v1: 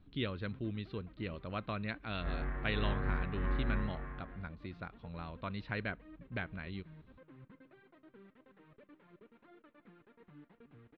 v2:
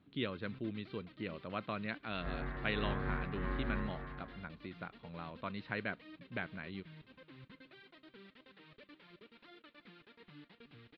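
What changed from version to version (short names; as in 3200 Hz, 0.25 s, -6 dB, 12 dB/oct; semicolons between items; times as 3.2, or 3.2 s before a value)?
speech: add BPF 150–4700 Hz; first sound: remove LPF 1300 Hz 12 dB/oct; second sound: add HPF 62 Hz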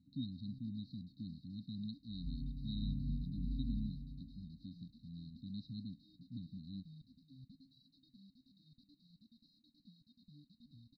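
master: add brick-wall FIR band-stop 290–3700 Hz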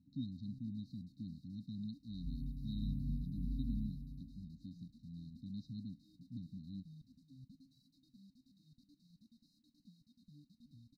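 master: add resonant high shelf 5300 Hz +9 dB, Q 3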